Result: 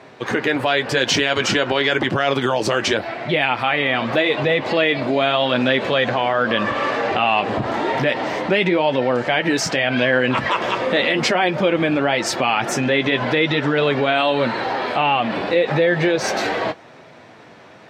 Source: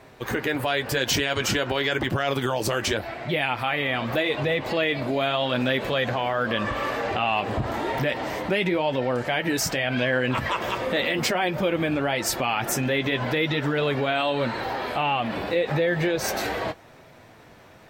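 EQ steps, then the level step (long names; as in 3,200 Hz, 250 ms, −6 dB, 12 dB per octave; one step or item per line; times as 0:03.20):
band-pass filter 150–5,800 Hz
+6.5 dB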